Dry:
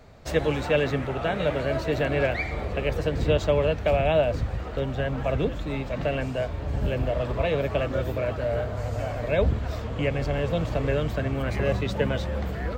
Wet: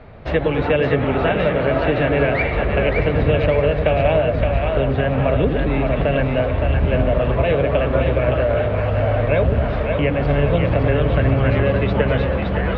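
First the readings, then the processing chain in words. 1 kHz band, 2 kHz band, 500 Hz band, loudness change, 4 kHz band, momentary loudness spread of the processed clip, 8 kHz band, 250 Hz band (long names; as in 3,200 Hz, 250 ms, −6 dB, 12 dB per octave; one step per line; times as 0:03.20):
+8.5 dB, +8.0 dB, +7.5 dB, +8.0 dB, +4.5 dB, 3 LU, can't be measured, +9.0 dB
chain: low-pass filter 3,100 Hz 24 dB per octave
downward compressor, threshold −23 dBFS, peak gain reduction 7 dB
on a send: echo with a time of its own for lows and highs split 530 Hz, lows 104 ms, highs 567 ms, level −4 dB
on the sum: level +9 dB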